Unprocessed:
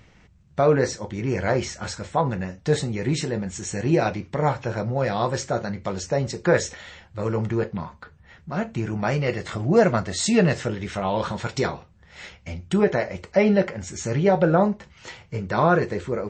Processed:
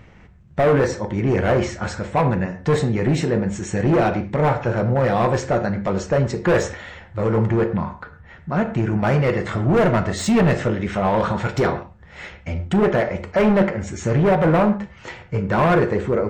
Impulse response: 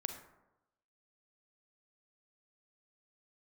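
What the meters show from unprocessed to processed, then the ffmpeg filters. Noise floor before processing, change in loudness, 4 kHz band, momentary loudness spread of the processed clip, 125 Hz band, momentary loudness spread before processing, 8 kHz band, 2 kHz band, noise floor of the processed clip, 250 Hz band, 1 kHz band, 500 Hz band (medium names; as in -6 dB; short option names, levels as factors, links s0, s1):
-54 dBFS, +4.0 dB, -1.0 dB, 11 LU, +5.5 dB, 14 LU, -3.0 dB, +3.5 dB, -46 dBFS, +4.5 dB, +4.0 dB, +3.5 dB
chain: -filter_complex "[0:a]volume=10,asoftclip=hard,volume=0.1,asplit=2[s0][s1];[1:a]atrim=start_sample=2205,atrim=end_sample=6174,lowpass=2800[s2];[s1][s2]afir=irnorm=-1:irlink=0,volume=1.68[s3];[s0][s3]amix=inputs=2:normalize=0,volume=0.891"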